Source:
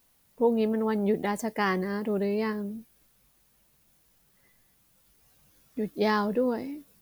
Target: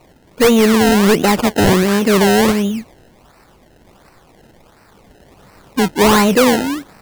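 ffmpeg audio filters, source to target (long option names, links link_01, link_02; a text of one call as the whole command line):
ffmpeg -i in.wav -af "acrusher=samples=26:mix=1:aa=0.000001:lfo=1:lforange=26:lforate=1.4,aeval=exprs='0.251*(cos(1*acos(clip(val(0)/0.251,-1,1)))-cos(1*PI/2))+0.0891*(cos(5*acos(clip(val(0)/0.251,-1,1)))-cos(5*PI/2))':channel_layout=same,volume=8.5dB" out.wav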